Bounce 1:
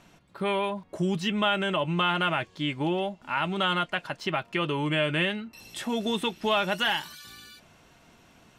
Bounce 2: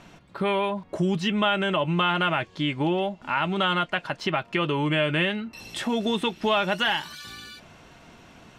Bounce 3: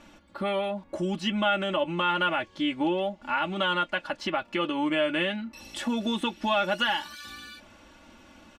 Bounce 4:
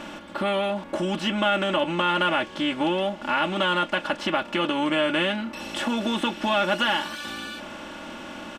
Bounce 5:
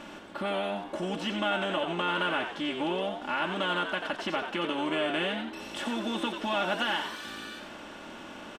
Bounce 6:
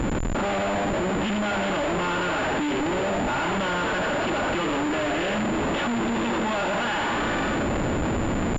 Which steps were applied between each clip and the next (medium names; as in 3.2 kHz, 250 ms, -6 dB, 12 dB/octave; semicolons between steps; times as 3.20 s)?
in parallel at +2.5 dB: compression, threshold -35 dBFS, peak gain reduction 14 dB; on the sum: treble shelf 8.7 kHz -11.5 dB
comb 3.5 ms, depth 89%; trim -5 dB
spectral levelling over time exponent 0.6
frequency-shifting echo 89 ms, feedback 34%, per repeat +98 Hz, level -7 dB; trim -7 dB
Schroeder reverb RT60 0.8 s, combs from 30 ms, DRR 5.5 dB; Schmitt trigger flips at -39.5 dBFS; class-D stage that switches slowly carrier 7.1 kHz; trim +6.5 dB